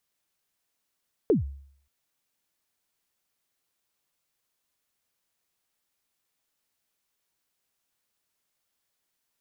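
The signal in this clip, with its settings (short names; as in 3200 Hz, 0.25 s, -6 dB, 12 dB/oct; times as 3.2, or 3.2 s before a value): kick drum length 0.58 s, from 490 Hz, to 69 Hz, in 0.134 s, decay 0.60 s, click off, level -15 dB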